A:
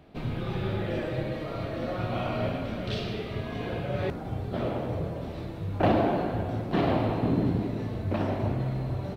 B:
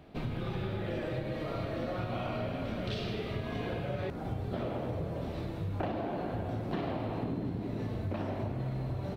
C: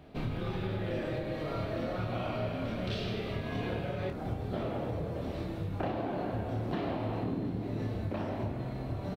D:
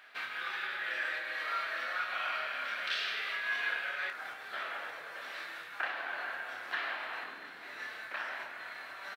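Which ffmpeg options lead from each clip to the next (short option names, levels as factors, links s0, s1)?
-af "acompressor=threshold=0.0282:ratio=10"
-filter_complex "[0:a]asplit=2[s0][s1];[s1]adelay=27,volume=0.447[s2];[s0][s2]amix=inputs=2:normalize=0"
-af "highpass=f=1600:t=q:w=3.5,volume=1.58"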